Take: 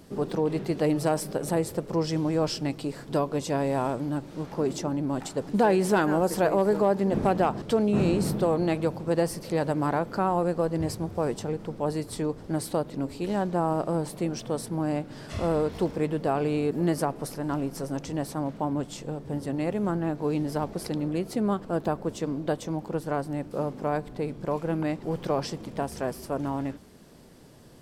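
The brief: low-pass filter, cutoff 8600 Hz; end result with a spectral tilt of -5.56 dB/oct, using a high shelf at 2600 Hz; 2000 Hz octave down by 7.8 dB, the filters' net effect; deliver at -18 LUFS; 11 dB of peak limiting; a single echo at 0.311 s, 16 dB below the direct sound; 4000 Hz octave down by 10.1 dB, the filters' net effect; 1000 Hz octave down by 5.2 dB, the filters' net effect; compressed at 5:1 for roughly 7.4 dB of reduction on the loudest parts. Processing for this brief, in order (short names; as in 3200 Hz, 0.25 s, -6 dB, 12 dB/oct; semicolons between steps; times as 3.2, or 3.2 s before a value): LPF 8600 Hz; bell 1000 Hz -5.5 dB; bell 2000 Hz -5 dB; high shelf 2600 Hz -4.5 dB; bell 4000 Hz -7.5 dB; compressor 5:1, threshold -28 dBFS; limiter -31 dBFS; echo 0.311 s -16 dB; gain +21.5 dB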